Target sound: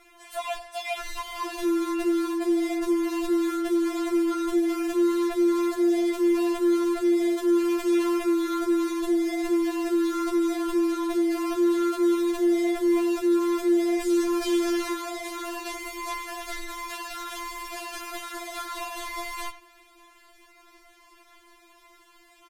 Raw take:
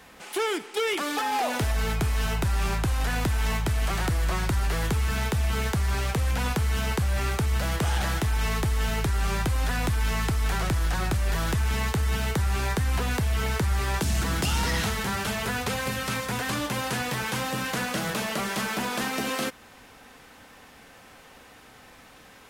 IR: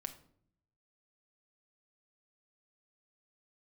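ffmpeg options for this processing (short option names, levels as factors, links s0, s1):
-filter_complex "[0:a]asplit=2[s0][s1];[s1]adelay=90,highpass=300,lowpass=3400,asoftclip=type=hard:threshold=0.0501,volume=0.316[s2];[s0][s2]amix=inputs=2:normalize=0,aeval=exprs='val(0)*sin(2*PI*280*n/s)':c=same,afftfilt=real='re*4*eq(mod(b,16),0)':imag='im*4*eq(mod(b,16),0)':win_size=2048:overlap=0.75"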